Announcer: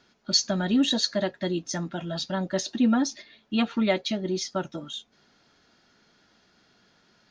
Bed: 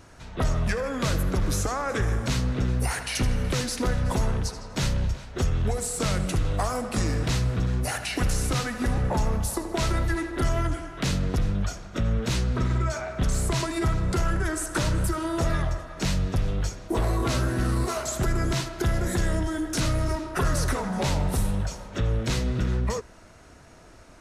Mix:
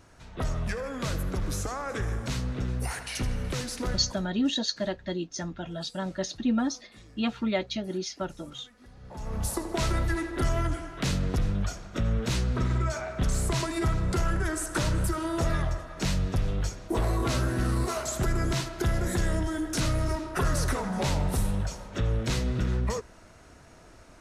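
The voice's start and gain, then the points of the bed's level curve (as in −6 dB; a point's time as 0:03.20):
3.65 s, −4.0 dB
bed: 0:03.95 −5.5 dB
0:04.33 −27 dB
0:08.95 −27 dB
0:09.44 −2 dB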